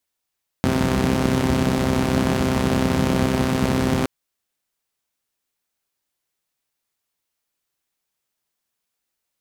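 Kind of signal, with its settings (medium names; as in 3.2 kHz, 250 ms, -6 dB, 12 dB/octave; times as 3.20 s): four-cylinder engine model, steady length 3.42 s, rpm 3900, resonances 85/180 Hz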